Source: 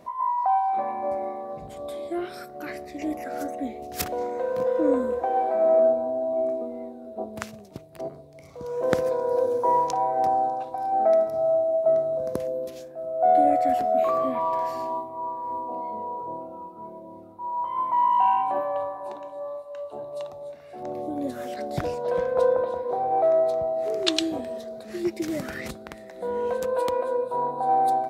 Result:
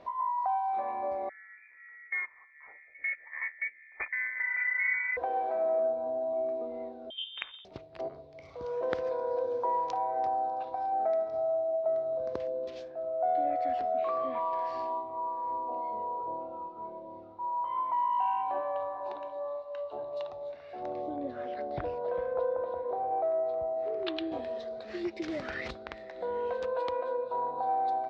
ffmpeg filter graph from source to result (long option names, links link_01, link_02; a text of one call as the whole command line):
ffmpeg -i in.wav -filter_complex "[0:a]asettb=1/sr,asplit=3[link_01][link_02][link_03];[link_01]atrim=end=1.294[link_04];[link_02]atrim=start=1.29:end=5.17,asetpts=PTS-STARTPTS,afade=type=in:duration=0.004:curve=qsin,afade=type=out:start_time=3.876:duration=0.004:curve=qsin,agate=range=-17dB:threshold=-31dB:ratio=16:release=100:detection=peak,lowpass=frequency=2100:width_type=q:width=0.5098,lowpass=frequency=2100:width_type=q:width=0.6013,lowpass=frequency=2100:width_type=q:width=0.9,lowpass=frequency=2100:width_type=q:width=2.563,afreqshift=-2500[link_05];[link_03]atrim=start=5.166[link_06];[link_04][link_05]acrossfade=duration=0.004:curve1=hsin:curve2=qsin[link_07];[link_07][link_06]acrossfade=duration=0.004:curve1=qsin:curve2=hsin,asettb=1/sr,asplit=3[link_08][link_09][link_10];[link_08]atrim=end=7.104[link_11];[link_09]atrim=start=7.1:end=7.65,asetpts=PTS-STARTPTS,afade=type=in:duration=0.004:curve=qsin,afade=type=out:start_time=0.546:duration=0.004:curve=qsin,equalizer=frequency=310:width_type=o:width=1.4:gain=-13.5,lowpass=frequency=3200:width_type=q:width=0.5098,lowpass=frequency=3200:width_type=q:width=0.6013,lowpass=frequency=3200:width_type=q:width=0.9,lowpass=frequency=3200:width_type=q:width=2.563,afreqshift=-3800[link_12];[link_10]atrim=start=7.646[link_13];[link_11][link_12]acrossfade=duration=0.004:curve1=hsin:curve2=qsin[link_14];[link_14][link_13]acrossfade=duration=0.004:curve1=qsin:curve2=hsin,asettb=1/sr,asplit=3[link_15][link_16][link_17];[link_15]atrim=end=21.164[link_18];[link_16]atrim=start=21.16:end=24.32,asetpts=PTS-STARTPTS,afade=type=in:duration=0.004:curve=qsin,afade=type=out:start_time=3.156:duration=0.004:curve=qsin,acrossover=split=4400[link_19][link_20];[link_20]acompressor=threshold=-58dB:ratio=4:attack=1:release=60[link_21];[link_19][link_21]amix=inputs=2:normalize=0,highshelf=frequency=2100:gain=-10.5[link_22];[link_17]atrim=start=24.316[link_23];[link_18][link_22]acrossfade=duration=0.004:curve1=hsin:curve2=qsin[link_24];[link_24][link_23]acrossfade=duration=0.004:curve1=qsin:curve2=hsin,lowpass=frequency=4500:width=0.5412,lowpass=frequency=4500:width=1.3066,equalizer=frequency=180:width_type=o:width=1.6:gain=-10.5,acompressor=threshold=-33dB:ratio=2" out.wav